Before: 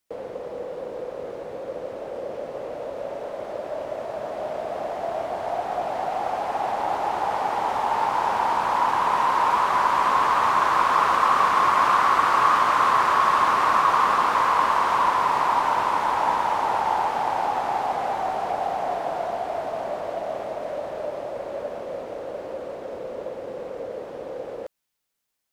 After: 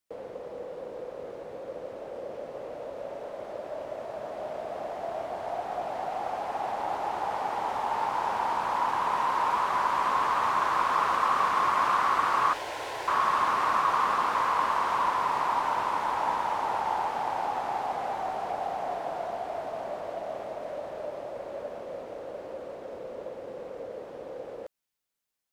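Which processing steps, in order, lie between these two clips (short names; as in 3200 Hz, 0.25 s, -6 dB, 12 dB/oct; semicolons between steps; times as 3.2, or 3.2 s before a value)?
12.53–13.08 fixed phaser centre 490 Hz, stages 4; gain -6 dB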